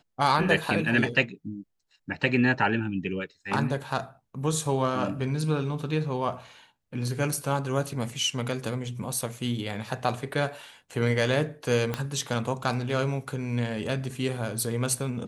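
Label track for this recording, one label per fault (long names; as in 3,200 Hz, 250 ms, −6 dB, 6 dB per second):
11.940000	11.940000	click −14 dBFS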